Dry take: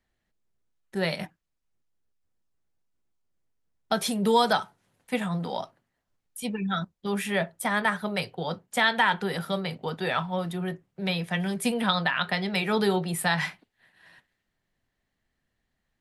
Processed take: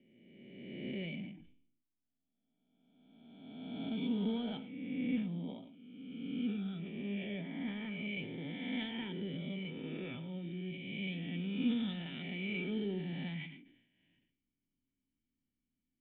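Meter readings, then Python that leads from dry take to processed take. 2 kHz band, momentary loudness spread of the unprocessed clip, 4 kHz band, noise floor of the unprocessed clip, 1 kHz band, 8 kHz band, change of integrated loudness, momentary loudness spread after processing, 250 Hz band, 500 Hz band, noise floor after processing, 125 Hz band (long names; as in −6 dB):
−17.5 dB, 11 LU, −14.5 dB, −80 dBFS, −27.5 dB, below −40 dB, −12.0 dB, 14 LU, −6.0 dB, −16.5 dB, below −85 dBFS, −9.0 dB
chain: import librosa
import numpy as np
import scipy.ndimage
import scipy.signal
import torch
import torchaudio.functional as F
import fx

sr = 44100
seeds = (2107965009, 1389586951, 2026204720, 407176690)

p1 = fx.spec_swells(x, sr, rise_s=1.79)
p2 = fx.notch(p1, sr, hz=1100.0, q=7.1)
p3 = np.clip(10.0 ** (21.0 / 20.0) * p2, -1.0, 1.0) / 10.0 ** (21.0 / 20.0)
p4 = p2 + (p3 * 10.0 ** (-8.0 / 20.0))
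p5 = fx.formant_cascade(p4, sr, vowel='i')
p6 = p5 + fx.echo_single(p5, sr, ms=110, db=-14.5, dry=0)
p7 = fx.sustainer(p6, sr, db_per_s=73.0)
y = p7 * 10.0 ** (-5.5 / 20.0)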